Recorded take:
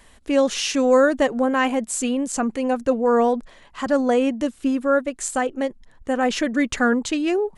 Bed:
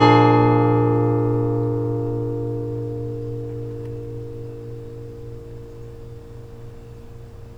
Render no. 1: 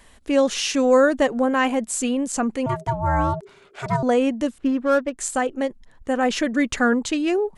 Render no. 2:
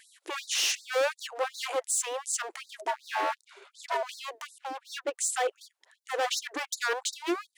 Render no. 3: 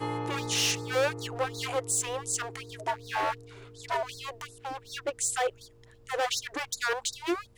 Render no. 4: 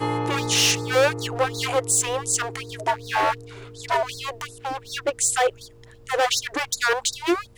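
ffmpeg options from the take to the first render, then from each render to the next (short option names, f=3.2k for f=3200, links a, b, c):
-filter_complex "[0:a]asettb=1/sr,asplit=3[a][b][c];[a]atrim=end=2.664[d];[b]atrim=start=2.66:end=4.03,asetpts=PTS-STARTPTS,afade=t=in:d=0.004:c=qsin,afade=t=out:st=1.366:d=0.004:c=qsin,aeval=exprs='val(0)*sin(2*PI*400*n/s)':c=same[e];[c]atrim=start=4.026[f];[d][e]acrossfade=d=0.004:c1=hsin:c2=qsin[g];[g][f]acrossfade=d=0.004:c1=qsin:c2=hsin,asettb=1/sr,asplit=3[h][i][j];[h]atrim=end=4.584[k];[i]atrim=start=4.58:end=5.18,asetpts=PTS-STARTPTS,afade=t=in:d=0.004:c=qsin,afade=t=out:st=0.596:d=0.004:c=qsin,adynamicsmooth=sensitivity=4.5:basefreq=1.5k[l];[j]atrim=start=5.176[m];[k][l]acrossfade=d=0.004:c1=hsin:c2=qsin[n];[n][m]acrossfade=d=0.004:c1=qsin:c2=hsin"
-af "asoftclip=type=hard:threshold=-23dB,afftfilt=real='re*gte(b*sr/1024,300*pow(3800/300,0.5+0.5*sin(2*PI*2.7*pts/sr)))':imag='im*gte(b*sr/1024,300*pow(3800/300,0.5+0.5*sin(2*PI*2.7*pts/sr)))':win_size=1024:overlap=0.75"
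-filter_complex "[1:a]volume=-20.5dB[a];[0:a][a]amix=inputs=2:normalize=0"
-af "volume=8dB"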